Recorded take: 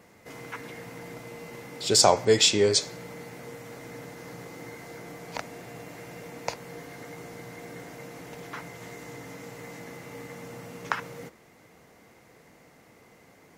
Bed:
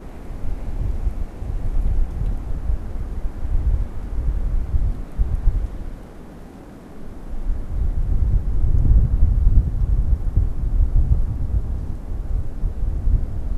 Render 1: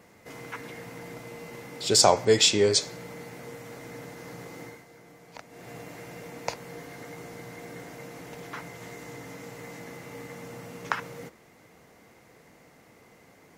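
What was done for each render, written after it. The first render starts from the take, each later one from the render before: 4.62–5.71 dip -10 dB, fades 0.23 s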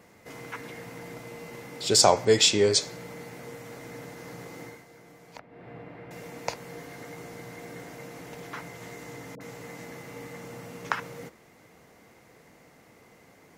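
5.39–6.11 air absorption 440 m; 9.35–10.45 dispersion highs, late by 56 ms, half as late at 740 Hz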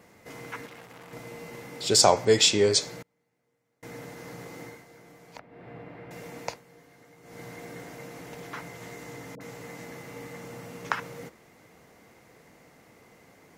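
0.66–1.13 core saturation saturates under 2000 Hz; 3.02–3.83 flipped gate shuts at -40 dBFS, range -34 dB; 6.42–7.42 dip -13 dB, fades 0.20 s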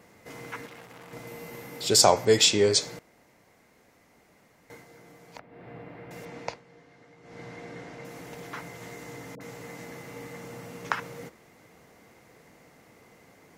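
1.27–2.45 bell 13000 Hz +10.5 dB 0.33 oct; 2.99–4.7 room tone; 6.25–8.05 LPF 5100 Hz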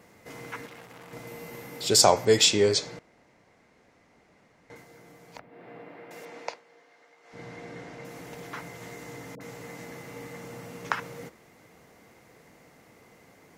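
2.74–4.76 air absorption 66 m; 5.49–7.32 HPF 190 Hz -> 660 Hz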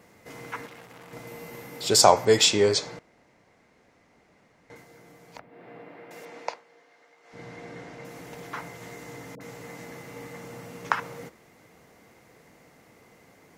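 dynamic EQ 990 Hz, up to +5 dB, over -45 dBFS, Q 1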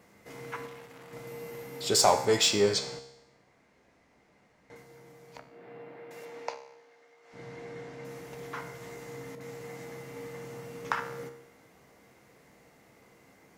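in parallel at -3.5 dB: hard clip -18 dBFS, distortion -7 dB; on the sum: resonator 67 Hz, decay 0.84 s, harmonics all, mix 70%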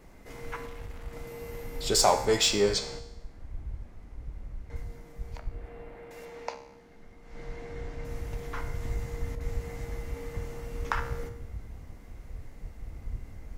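add bed -18.5 dB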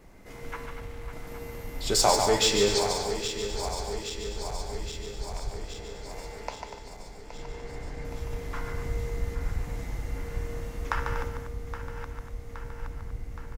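regenerating reverse delay 0.41 s, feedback 80%, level -10 dB; on a send: loudspeakers at several distances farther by 50 m -6 dB, 83 m -10 dB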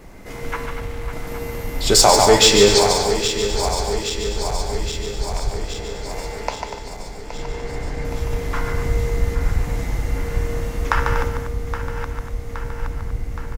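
gain +11 dB; limiter -1 dBFS, peak gain reduction 3 dB

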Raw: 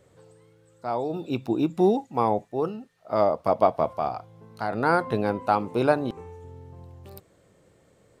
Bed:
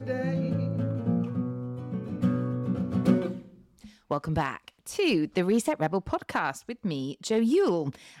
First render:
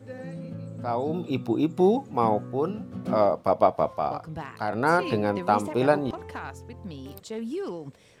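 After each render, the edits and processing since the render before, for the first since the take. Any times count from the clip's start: add bed -9 dB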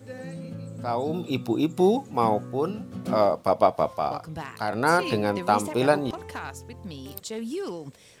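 high shelf 3400 Hz +10 dB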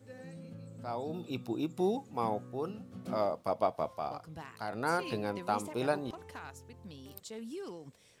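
gain -10.5 dB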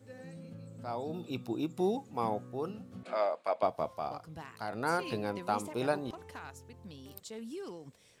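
3.03–3.63 speaker cabinet 490–8700 Hz, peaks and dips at 630 Hz +3 dB, 1600 Hz +7 dB, 2400 Hz +9 dB, 4000 Hz +4 dB, 5700 Hz -9 dB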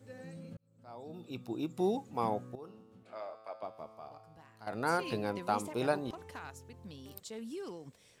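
0.57–1.94 fade in; 2.55–4.67 resonator 110 Hz, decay 1.8 s, mix 80%

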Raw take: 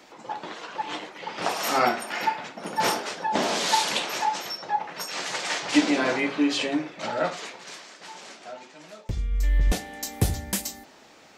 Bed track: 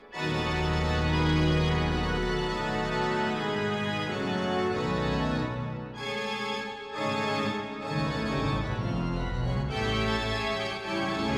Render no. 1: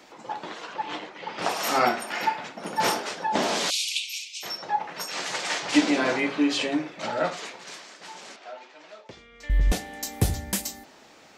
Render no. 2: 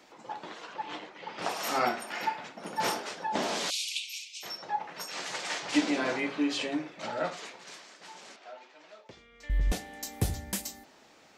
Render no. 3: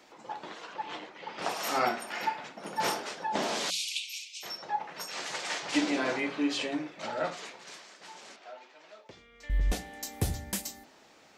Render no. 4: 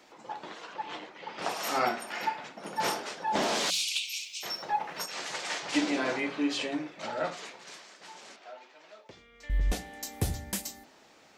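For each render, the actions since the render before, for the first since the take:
0.74–1.39 air absorption 69 m; 3.7–4.43 steep high-pass 2300 Hz 96 dB/oct; 8.36–9.5 BPF 410–4400 Hz
gain -6 dB
notches 60/120/180/240/300 Hz
3.27–5.06 sample leveller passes 1

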